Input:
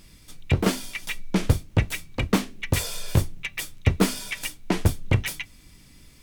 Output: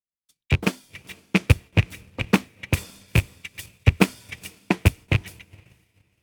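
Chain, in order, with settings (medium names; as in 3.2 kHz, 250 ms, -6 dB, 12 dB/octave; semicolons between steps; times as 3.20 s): rattle on loud lows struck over -19 dBFS, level -10 dBFS; high-pass 57 Hz 12 dB/octave; echo that smears into a reverb 495 ms, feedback 50%, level -11 dB; transient shaper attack +10 dB, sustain -4 dB; gate with hold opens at -32 dBFS; three bands expanded up and down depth 70%; trim -8.5 dB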